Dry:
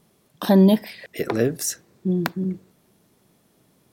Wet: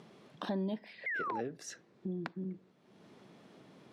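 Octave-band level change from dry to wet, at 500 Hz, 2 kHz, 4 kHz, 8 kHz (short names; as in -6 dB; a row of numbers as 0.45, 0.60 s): -18.5, -5.0, -17.0, -21.0 dB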